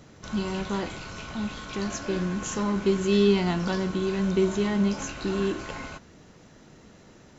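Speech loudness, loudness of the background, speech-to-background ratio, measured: -27.0 LUFS, -39.0 LUFS, 12.0 dB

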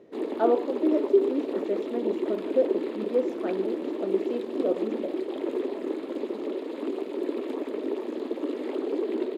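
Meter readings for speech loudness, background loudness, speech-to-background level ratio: -29.0 LUFS, -31.5 LUFS, 2.5 dB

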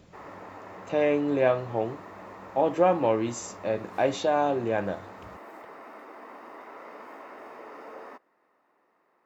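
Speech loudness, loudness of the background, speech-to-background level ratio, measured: -26.5 LUFS, -45.0 LUFS, 18.5 dB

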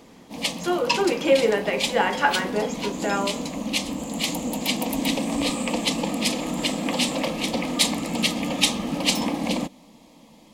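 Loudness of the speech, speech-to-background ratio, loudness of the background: -24.0 LUFS, 1.5 dB, -25.5 LUFS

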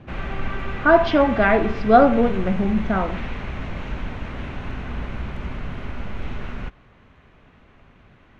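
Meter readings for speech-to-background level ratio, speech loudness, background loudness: 13.5 dB, -18.5 LUFS, -32.0 LUFS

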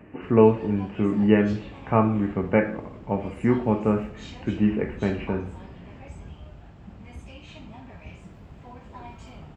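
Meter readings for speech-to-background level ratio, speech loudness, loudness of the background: 20.0 dB, -23.5 LUFS, -43.5 LUFS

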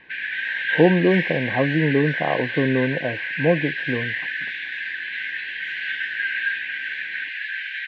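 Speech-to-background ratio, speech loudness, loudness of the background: 4.0 dB, -22.0 LUFS, -26.0 LUFS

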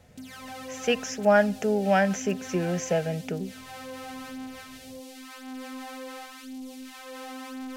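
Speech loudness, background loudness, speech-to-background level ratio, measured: -26.0 LUFS, -40.5 LUFS, 14.5 dB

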